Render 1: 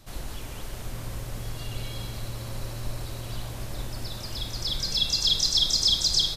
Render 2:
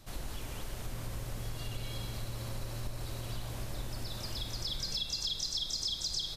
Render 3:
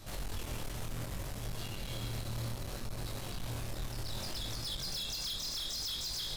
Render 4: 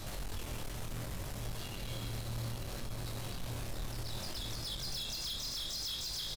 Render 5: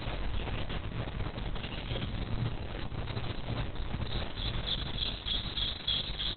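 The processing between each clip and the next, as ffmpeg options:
ffmpeg -i in.wav -af "acompressor=threshold=-30dB:ratio=5,volume=-3dB" out.wav
ffmpeg -i in.wav -filter_complex "[0:a]asplit=2[link_01][link_02];[link_02]alimiter=level_in=10dB:limit=-24dB:level=0:latency=1,volume=-10dB,volume=1dB[link_03];[link_01][link_03]amix=inputs=2:normalize=0,asoftclip=type=hard:threshold=-35dB,flanger=delay=19.5:depth=7:speed=0.66,volume=2dB" out.wav
ffmpeg -i in.wav -af "alimiter=level_in=18.5dB:limit=-24dB:level=0:latency=1,volume=-18.5dB,acrusher=bits=8:mode=log:mix=0:aa=0.000001,aecho=1:1:885:0.299,volume=8dB" out.wav
ffmpeg -i in.wav -af "aeval=exprs='val(0)+0.00355*(sin(2*PI*50*n/s)+sin(2*PI*2*50*n/s)/2+sin(2*PI*3*50*n/s)/3+sin(2*PI*4*50*n/s)/4+sin(2*PI*5*50*n/s)/5)':channel_layout=same,volume=8dB" -ar 48000 -c:a libopus -b:a 6k out.opus

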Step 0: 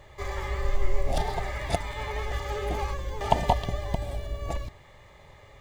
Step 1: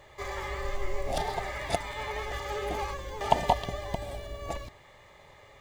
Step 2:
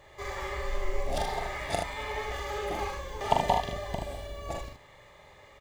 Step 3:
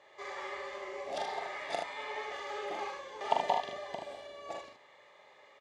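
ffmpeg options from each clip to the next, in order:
ffmpeg -i in.wav -af "lowshelf=frequency=170:gain=-9.5" out.wav
ffmpeg -i in.wav -af "aecho=1:1:42|76:0.596|0.531,volume=-2dB" out.wav
ffmpeg -i in.wav -af "highpass=360,lowpass=5700,volume=-4dB" out.wav

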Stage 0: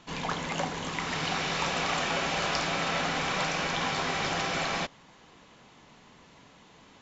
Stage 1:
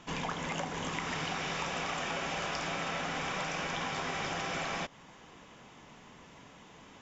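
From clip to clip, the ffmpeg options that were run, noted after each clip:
ffmpeg -i in.wav -af "equalizer=frequency=4200:width_type=o:width=0.24:gain=-9,acompressor=threshold=-34dB:ratio=6,volume=1.5dB" out.wav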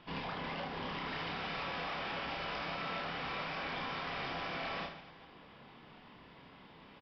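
ffmpeg -i in.wav -af "aresample=11025,asoftclip=type=hard:threshold=-33.5dB,aresample=44100,aecho=1:1:30|75|142.5|243.8|395.6:0.631|0.398|0.251|0.158|0.1,volume=-4.5dB" out.wav

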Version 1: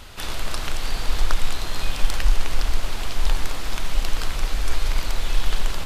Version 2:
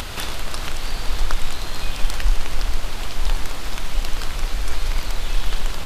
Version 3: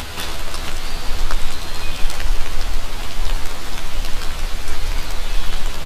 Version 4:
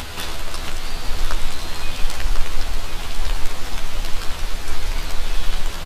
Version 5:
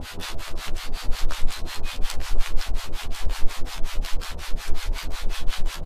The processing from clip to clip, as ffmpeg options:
ffmpeg -i in.wav -af "acompressor=mode=upward:threshold=-19dB:ratio=2.5" out.wav
ffmpeg -i in.wav -filter_complex "[0:a]asplit=2[link_01][link_02];[link_02]adelay=12,volume=-3dB[link_03];[link_01][link_03]amix=inputs=2:normalize=0" out.wav
ffmpeg -i in.wav -af "aecho=1:1:1048:0.398,volume=-2dB" out.wav
ffmpeg -i in.wav -filter_complex "[0:a]acrossover=split=700[link_01][link_02];[link_01]aeval=exprs='val(0)*(1-1/2+1/2*cos(2*PI*5.5*n/s))':channel_layout=same[link_03];[link_02]aeval=exprs='val(0)*(1-1/2-1/2*cos(2*PI*5.5*n/s))':channel_layout=same[link_04];[link_03][link_04]amix=inputs=2:normalize=0" out.wav

